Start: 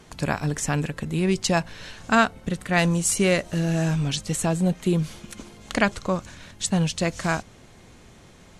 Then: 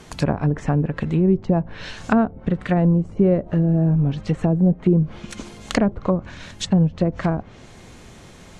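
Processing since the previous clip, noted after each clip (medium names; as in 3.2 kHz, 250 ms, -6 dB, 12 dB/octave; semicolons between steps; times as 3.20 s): low-pass that closes with the level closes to 490 Hz, closed at -19.5 dBFS; trim +6 dB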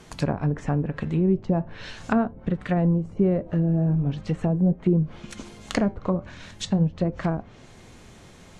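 flange 0.41 Hz, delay 5.8 ms, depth 5.9 ms, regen -79%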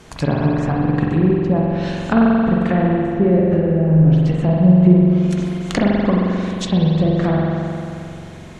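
spring tank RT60 2.8 s, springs 44 ms, chirp 20 ms, DRR -3 dB; trim +4 dB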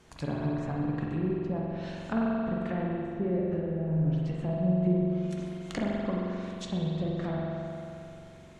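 feedback comb 73 Hz, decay 1.1 s, harmonics all, mix 70%; trim -6 dB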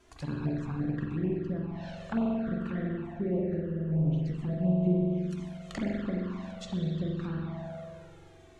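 touch-sensitive flanger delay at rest 3.1 ms, full sweep at -24 dBFS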